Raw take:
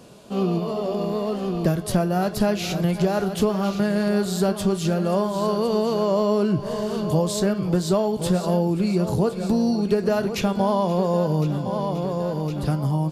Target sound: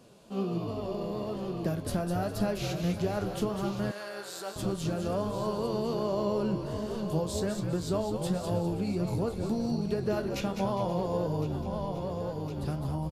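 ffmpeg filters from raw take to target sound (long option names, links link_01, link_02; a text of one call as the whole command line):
ffmpeg -i in.wav -filter_complex "[0:a]asplit=5[link_01][link_02][link_03][link_04][link_05];[link_02]adelay=204,afreqshift=-72,volume=-7dB[link_06];[link_03]adelay=408,afreqshift=-144,volume=-16.1dB[link_07];[link_04]adelay=612,afreqshift=-216,volume=-25.2dB[link_08];[link_05]adelay=816,afreqshift=-288,volume=-34.4dB[link_09];[link_01][link_06][link_07][link_08][link_09]amix=inputs=5:normalize=0,flanger=delay=7.3:depth=8.3:regen=67:speed=1.3:shape=triangular,asettb=1/sr,asplit=3[link_10][link_11][link_12];[link_10]atrim=end=3.914[link_13];[link_11]atrim=start=3.91:end=4.56,asetpts=PTS-STARTPTS,afade=type=in:duration=0.004:curve=qsin,afade=type=out:start_time=0.646:duration=0.004:curve=qsin,highpass=720[link_14];[link_12]atrim=start=4.556[link_15];[link_13][link_14]acrossfade=duration=0.004:curve1=hsin:curve2=qsin[link_16];[link_16][link_15]acrossfade=duration=0.004:curve1=qsin:curve2=hsin,volume=-5.5dB" out.wav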